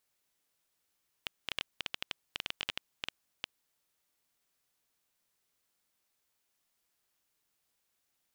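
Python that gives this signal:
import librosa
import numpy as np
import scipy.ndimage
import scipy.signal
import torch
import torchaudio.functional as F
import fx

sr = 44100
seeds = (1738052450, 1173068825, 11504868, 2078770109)

y = fx.geiger_clicks(sr, seeds[0], length_s=2.36, per_s=9.9, level_db=-16.0)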